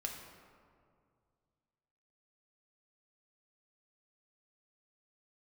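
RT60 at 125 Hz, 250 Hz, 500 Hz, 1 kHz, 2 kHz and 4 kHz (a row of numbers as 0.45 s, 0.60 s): 2.9 s, 2.5 s, 2.3 s, 2.1 s, 1.5 s, 1.0 s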